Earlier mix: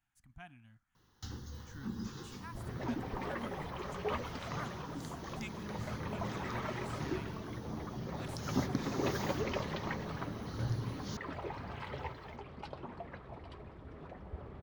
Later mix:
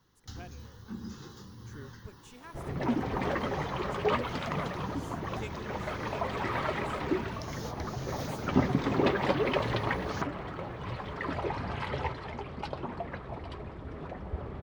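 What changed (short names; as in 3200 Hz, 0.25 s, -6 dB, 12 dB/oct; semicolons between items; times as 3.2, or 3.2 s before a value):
speech: remove Chebyshev band-stop 260–800 Hz; first sound: entry -0.95 s; second sound +8.5 dB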